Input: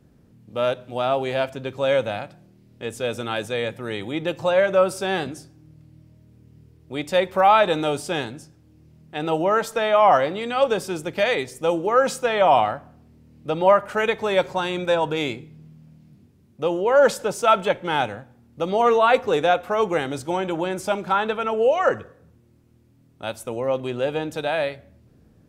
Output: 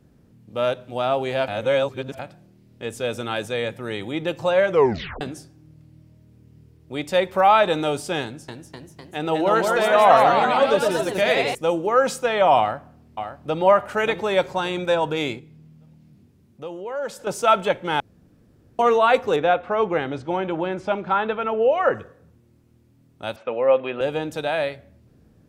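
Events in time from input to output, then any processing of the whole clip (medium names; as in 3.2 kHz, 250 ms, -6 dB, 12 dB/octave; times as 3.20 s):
1.48–2.19 s: reverse
4.70 s: tape stop 0.51 s
8.23–11.55 s: ever faster or slower copies 252 ms, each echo +1 st, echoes 3
12.59–13.62 s: echo throw 580 ms, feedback 30%, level -8 dB
15.39–17.27 s: compression 1.5:1, threshold -49 dBFS
18.00–18.79 s: room tone
19.36–21.95 s: low-pass 3 kHz
23.36–24.01 s: cabinet simulation 230–3500 Hz, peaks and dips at 340 Hz -5 dB, 530 Hz +7 dB, 790 Hz +3 dB, 1.2 kHz +6 dB, 1.7 kHz +6 dB, 2.5 kHz +7 dB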